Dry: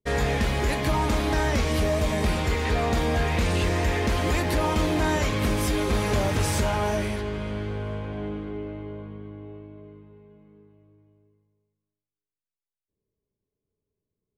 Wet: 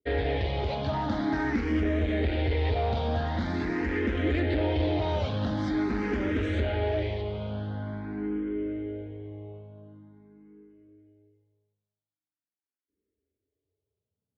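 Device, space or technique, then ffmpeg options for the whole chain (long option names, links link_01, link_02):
barber-pole phaser into a guitar amplifier: -filter_complex "[0:a]asplit=2[link_01][link_02];[link_02]afreqshift=0.45[link_03];[link_01][link_03]amix=inputs=2:normalize=1,asoftclip=type=tanh:threshold=-22dB,highpass=75,equalizer=frequency=80:width_type=q:width=4:gain=6,equalizer=frequency=160:width_type=q:width=4:gain=-9,equalizer=frequency=290:width_type=q:width=4:gain=7,equalizer=frequency=1100:width_type=q:width=4:gain=-10,equalizer=frequency=2600:width_type=q:width=4:gain=-6,lowpass=frequency=3700:width=0.5412,lowpass=frequency=3700:width=1.3066,volume=1.5dB"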